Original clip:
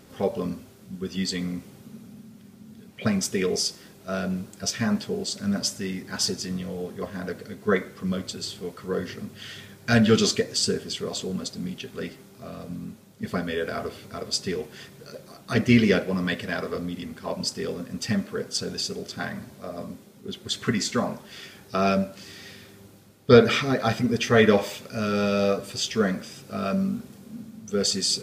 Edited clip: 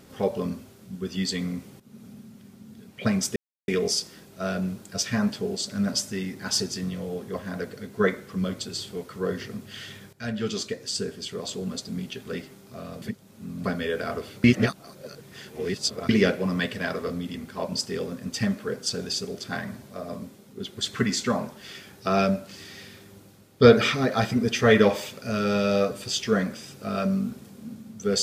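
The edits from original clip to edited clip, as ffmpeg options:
-filter_complex "[0:a]asplit=8[a][b][c][d][e][f][g][h];[a]atrim=end=1.8,asetpts=PTS-STARTPTS,afade=t=out:st=1.796:d=0.004:c=hsin:silence=0.177828[i];[b]atrim=start=1.8:end=3.36,asetpts=PTS-STARTPTS,afade=t=in:d=0.27:silence=0.177828,afade=t=out:st=1.556:d=0.004:c=hsin,apad=pad_dur=0.32[j];[c]atrim=start=3.36:end=9.81,asetpts=PTS-STARTPTS,afade=t=in:d=0.004:c=hsin,afade=t=out:st=6.446:d=0.004:c=hsin:silence=0.16788[k];[d]atrim=start=9.81:end=12.702,asetpts=PTS-STARTPTS,afade=t=in:d=1.88:silence=0.16788[l];[e]atrim=start=12.698:end=13.322,asetpts=PTS-STARTPTS,areverse[m];[f]atrim=start=13.318:end=14.122[n];[g]atrim=start=14.118:end=15.772,asetpts=PTS-STARTPTS,areverse[o];[h]atrim=start=15.768[p];[i][j][k][l]concat=n=4:v=0:a=1[q];[q][m]acrossfade=d=0.004:c1=hsin:c2=hsin[r];[r][n]acrossfade=d=0.004:c1=hsin:c2=hsin[s];[s][o]acrossfade=d=0.004:c1=hsin:c2=hsin[t];[t][p]acrossfade=d=0.004:c1=hsin:c2=hsin"

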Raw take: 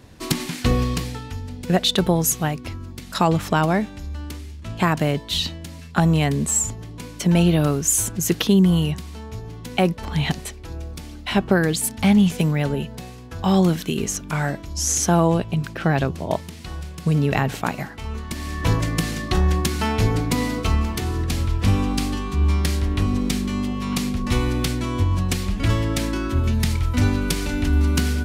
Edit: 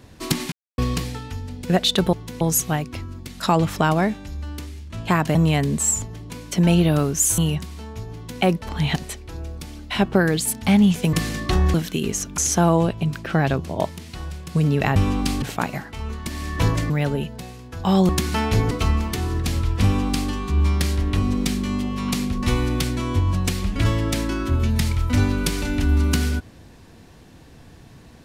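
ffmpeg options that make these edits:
-filter_complex "[0:a]asplit=15[a][b][c][d][e][f][g][h][i][j][k][l][m][n][o];[a]atrim=end=0.52,asetpts=PTS-STARTPTS,afade=t=out:st=0.516:d=0.004:c=hsin[p];[b]atrim=start=0.52:end=0.78,asetpts=PTS-STARTPTS,volume=0[q];[c]atrim=start=0.78:end=2.132,asetpts=PTS-STARTPTS,afade=t=in:d=0.004:c=hsin[r];[d]atrim=start=9.498:end=9.782[s];[e]atrim=start=2.128:end=5.072[t];[f]atrim=start=6.028:end=8.062[u];[g]atrim=start=8.738:end=12.492[v];[h]atrim=start=18.948:end=19.562[w];[i]atrim=start=13.678:end=14.322[x];[j]atrim=start=14.888:end=17.472[y];[k]atrim=start=21.678:end=22.142[z];[l]atrim=start=17.468:end=18.952[aa];[m]atrim=start=12.488:end=13.682[ab];[n]atrim=start=19.558:end=20.182[ac];[o]atrim=start=20.548[ad];[p][q][r]concat=n=3:v=0:a=1[ae];[ae][s]acrossfade=d=0.004:c1=hsin:c2=hsin[af];[af][t]acrossfade=d=0.004:c1=hsin:c2=hsin[ag];[ag][u]acrossfade=d=0.004:c1=hsin:c2=hsin[ah];[ah][v]acrossfade=d=0.004:c1=hsin:c2=hsin[ai];[ai][w]acrossfade=d=0.004:c1=hsin:c2=hsin[aj];[aj][x]acrossfade=d=0.004:c1=hsin:c2=hsin[ak];[ak][y]acrossfade=d=0.004:c1=hsin:c2=hsin[al];[al][z]acrossfade=d=0.004:c1=hsin:c2=hsin[am];[am][aa]acrossfade=d=0.004:c1=hsin:c2=hsin[an];[an][ab]acrossfade=d=0.004:c1=hsin:c2=hsin[ao];[ao][ac]acrossfade=d=0.004:c1=hsin:c2=hsin[ap];[ap][ad]acrossfade=d=0.004:c1=hsin:c2=hsin"

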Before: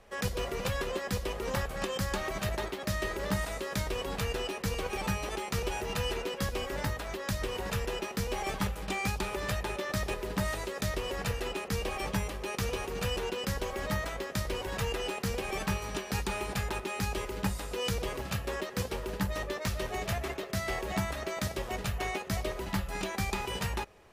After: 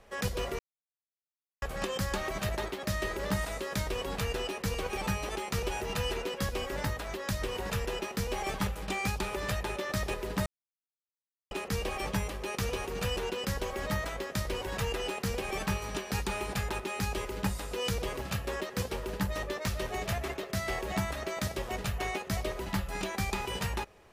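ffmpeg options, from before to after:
-filter_complex "[0:a]asplit=5[a][b][c][d][e];[a]atrim=end=0.59,asetpts=PTS-STARTPTS,afade=t=out:st=0.586:d=0.004:c=hsin[f];[b]atrim=start=0.59:end=1.62,asetpts=PTS-STARTPTS,volume=0[g];[c]atrim=start=1.62:end=10.46,asetpts=PTS-STARTPTS,afade=t=in:d=0.004:c=hsin,afade=t=out:st=8.836:d=0.004:c=hsin[h];[d]atrim=start=10.46:end=11.51,asetpts=PTS-STARTPTS,volume=0[i];[e]atrim=start=11.51,asetpts=PTS-STARTPTS,afade=t=in:d=0.004:c=hsin[j];[f][g][h][i][j]concat=n=5:v=0:a=1"

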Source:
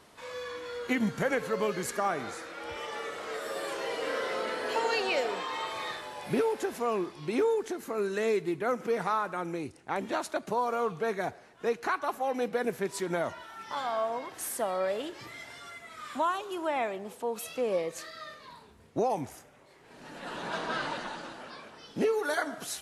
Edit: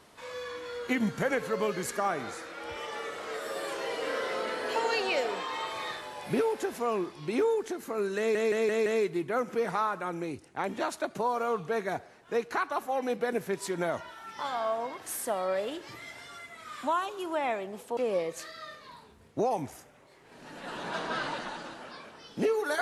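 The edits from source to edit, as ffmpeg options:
-filter_complex "[0:a]asplit=6[a][b][c][d][e][f];[a]atrim=end=8.352[g];[b]atrim=start=8.178:end=8.352[h];[c]atrim=start=8.178:end=8.352[i];[d]atrim=start=8.178:end=8.352[j];[e]atrim=start=8.178:end=17.292[k];[f]atrim=start=17.558[l];[g][h]acrossfade=d=0.004:c1=hsin:c2=hsin[m];[m][i]acrossfade=d=0.004:c1=hsin:c2=hsin[n];[n][j]acrossfade=d=0.004:c1=hsin:c2=hsin[o];[o][k]acrossfade=d=0.004:c1=hsin:c2=hsin[p];[p][l]acrossfade=d=0.004:c1=hsin:c2=hsin"

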